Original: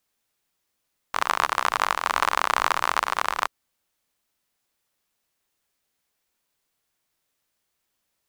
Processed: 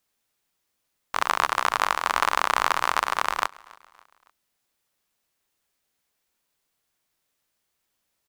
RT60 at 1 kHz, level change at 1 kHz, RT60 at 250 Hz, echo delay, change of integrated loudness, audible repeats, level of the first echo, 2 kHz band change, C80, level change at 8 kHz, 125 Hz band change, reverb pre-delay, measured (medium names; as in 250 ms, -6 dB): no reverb, 0.0 dB, no reverb, 280 ms, 0.0 dB, 2, -24.0 dB, 0.0 dB, no reverb, 0.0 dB, no reading, no reverb